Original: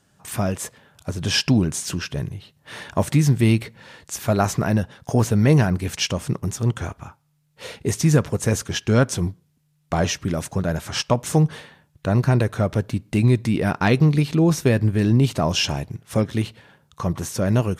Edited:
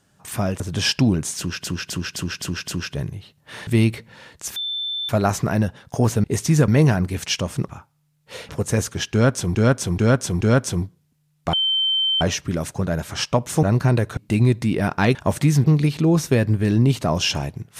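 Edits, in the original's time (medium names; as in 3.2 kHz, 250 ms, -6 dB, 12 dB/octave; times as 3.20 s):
0.60–1.09 s: delete
1.87–2.13 s: loop, 6 plays
2.86–3.35 s: move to 13.98 s
4.24 s: add tone 3.54 kHz -23.5 dBFS 0.53 s
6.39–6.98 s: delete
7.79–8.23 s: move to 5.39 s
8.86–9.29 s: loop, 4 plays
9.98 s: add tone 3.1 kHz -17 dBFS 0.68 s
11.40–12.06 s: delete
12.60–13.00 s: delete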